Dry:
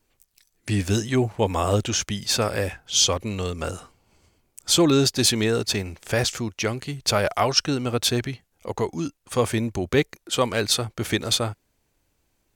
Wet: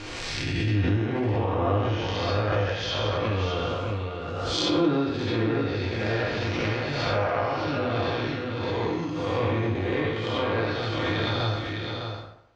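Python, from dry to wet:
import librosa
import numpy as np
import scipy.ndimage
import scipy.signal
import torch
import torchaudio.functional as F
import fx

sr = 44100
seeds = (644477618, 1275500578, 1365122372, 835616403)

p1 = fx.spec_blur(x, sr, span_ms=275.0)
p2 = fx.low_shelf(p1, sr, hz=390.0, db=-6.5)
p3 = fx.env_lowpass_down(p2, sr, base_hz=2000.0, full_db=-26.0)
p4 = p3 + fx.echo_single(p3, sr, ms=607, db=-6.5, dry=0)
p5 = fx.rider(p4, sr, range_db=3, speed_s=0.5)
p6 = scipy.signal.sosfilt(scipy.signal.butter(4, 4900.0, 'lowpass', fs=sr, output='sos'), p5)
p7 = fx.rev_fdn(p6, sr, rt60_s=0.8, lf_ratio=0.8, hf_ratio=0.55, size_ms=58.0, drr_db=-3.0)
y = fx.pre_swell(p7, sr, db_per_s=22.0)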